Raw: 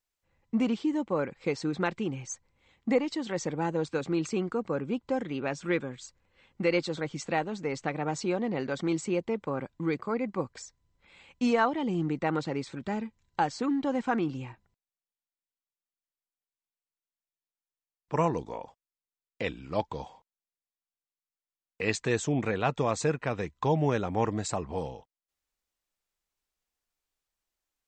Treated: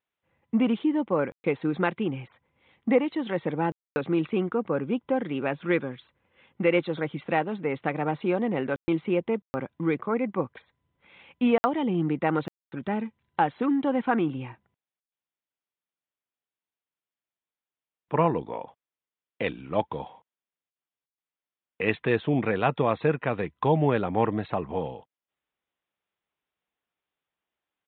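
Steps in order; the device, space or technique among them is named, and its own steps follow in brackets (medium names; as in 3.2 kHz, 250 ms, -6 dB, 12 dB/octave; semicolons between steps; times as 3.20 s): call with lost packets (high-pass 110 Hz 12 dB/octave; resampled via 8 kHz; lost packets of 60 ms bursts); treble shelf 5.4 kHz -5.5 dB; trim +4 dB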